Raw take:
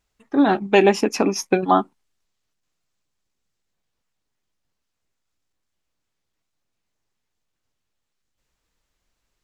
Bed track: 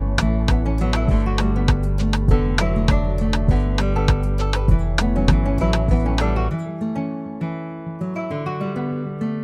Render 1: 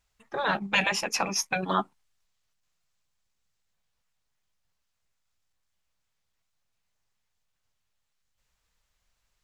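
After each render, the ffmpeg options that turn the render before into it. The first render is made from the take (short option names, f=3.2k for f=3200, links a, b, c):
-af "afftfilt=real='re*lt(hypot(re,im),0.631)':imag='im*lt(hypot(re,im),0.631)':win_size=1024:overlap=0.75,equalizer=f=310:w=1.1:g=-10.5"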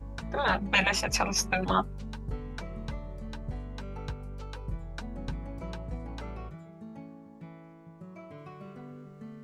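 -filter_complex "[1:a]volume=-20.5dB[a];[0:a][a]amix=inputs=2:normalize=0"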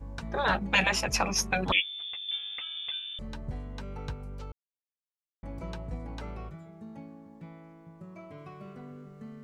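-filter_complex "[0:a]asettb=1/sr,asplit=3[a][b][c];[a]atrim=end=1.724[d];[b]atrim=start=1.72:end=3.19,asetpts=PTS-STARTPTS,afade=t=in:d=0.004:c=qsin,afade=t=out:st=1.466:d=0.004:c=qsin,lowpass=f=3.1k:t=q:w=0.5098,lowpass=f=3.1k:t=q:w=0.6013,lowpass=f=3.1k:t=q:w=0.9,lowpass=f=3.1k:t=q:w=2.563,afreqshift=-3600[e];[c]atrim=start=3.186[f];[d][e]acrossfade=d=0.004:c1=hsin:c2=qsin[g];[g][f]acrossfade=d=0.004:c1=qsin:c2=hsin,asplit=3[h][i][j];[h]atrim=end=4.52,asetpts=PTS-STARTPTS,afade=t=out:st=4.516:d=0.004:c=hsin[k];[i]atrim=start=4.52:end=5.43,asetpts=PTS-STARTPTS,volume=0[l];[j]atrim=start=5.43,asetpts=PTS-STARTPTS,afade=t=in:d=0.004:c=hsin[m];[k][l][m]concat=n=3:v=0:a=1"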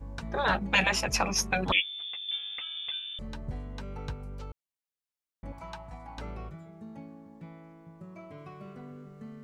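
-filter_complex "[0:a]asettb=1/sr,asplit=3[a][b][c];[a]atrim=end=2.094[d];[b]atrim=start=2.09:end=2.49,asetpts=PTS-STARTPTS,afade=t=in:d=0.004:c=qsin,afade=t=out:st=0.396:d=0.004:c=qsin,highpass=f=160:w=0.5412,highpass=f=160:w=1.3066[e];[c]atrim=start=2.486[f];[d][e]acrossfade=d=0.004:c1=hsin:c2=qsin[g];[g][f]acrossfade=d=0.004:c1=qsin:c2=hsin,asettb=1/sr,asplit=3[h][i][j];[h]atrim=end=5.524[k];[i]atrim=start=5.52:end=6.18,asetpts=PTS-STARTPTS,afade=t=in:d=0.004:c=qsin,afade=t=out:st=0.656:d=0.004:c=qsin,lowshelf=f=620:t=q:w=3:g=-8.5[l];[j]atrim=start=6.176[m];[k][l]acrossfade=d=0.004:c1=hsin:c2=qsin[n];[n][m]acrossfade=d=0.004:c1=qsin:c2=hsin"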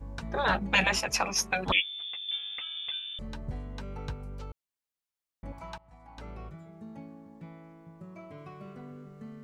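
-filter_complex "[0:a]asettb=1/sr,asplit=3[a][b][c];[a]atrim=end=0.994[d];[b]atrim=start=0.99:end=1.67,asetpts=PTS-STARTPTS,afade=t=in:d=0.004:c=qsin,afade=t=out:st=0.676:d=0.004:c=qsin,lowshelf=f=260:g=-10[e];[c]atrim=start=1.666[f];[d][e]acrossfade=d=0.004:c1=hsin:c2=qsin[g];[g][f]acrossfade=d=0.004:c1=qsin:c2=hsin,asplit=2[h][i];[h]atrim=end=5.78,asetpts=PTS-STARTPTS,afade=t=out:st=5.776:d=0.004:c=hsin:silence=0.112202[j];[i]atrim=start=5.78,asetpts=PTS-STARTPTS,afade=t=in:d=1.21:c=qsin:silence=0.112202[k];[j][k]concat=n=2:v=0:a=1"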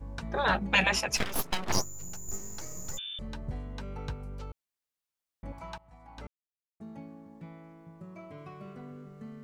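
-filter_complex "[0:a]asplit=3[a][b][c];[a]afade=t=out:st=1.16:d=0.02[d];[b]aeval=exprs='abs(val(0))':c=same,afade=t=in:st=1.16:d=0.02,afade=t=out:st=2.97:d=0.02[e];[c]afade=t=in:st=2.97:d=0.02[f];[d][e][f]amix=inputs=3:normalize=0,asplit=3[g][h][i];[g]atrim=end=6.27,asetpts=PTS-STARTPTS,afade=t=out:st=6.266:d=0.004:c=hsin[j];[h]atrim=start=6.27:end=6.8,asetpts=PTS-STARTPTS,volume=0[k];[i]atrim=start=6.8,asetpts=PTS-STARTPTS,afade=t=in:d=0.004:c=hsin[l];[j][k][l]concat=n=3:v=0:a=1"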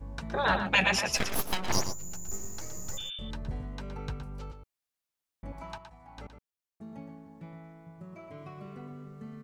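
-filter_complex "[0:a]asplit=2[a][b];[b]adelay=116.6,volume=-8dB,highshelf=f=4k:g=-2.62[c];[a][c]amix=inputs=2:normalize=0"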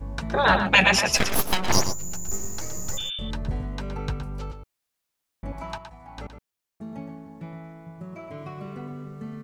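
-af "volume=7.5dB"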